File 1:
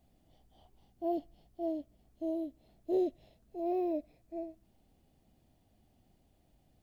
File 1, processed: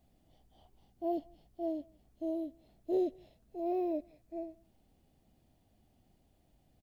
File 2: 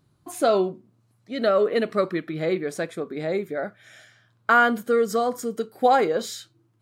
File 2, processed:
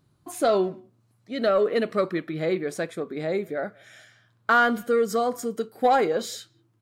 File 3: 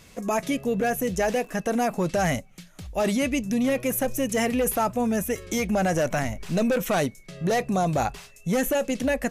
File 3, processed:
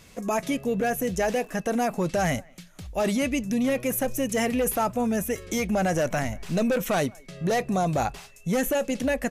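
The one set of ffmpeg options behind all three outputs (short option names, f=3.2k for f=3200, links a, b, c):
-filter_complex "[0:a]asplit=2[a][b];[b]adelay=180,highpass=300,lowpass=3.4k,asoftclip=type=hard:threshold=-17dB,volume=-27dB[c];[a][c]amix=inputs=2:normalize=0,acontrast=76,volume=-7.5dB"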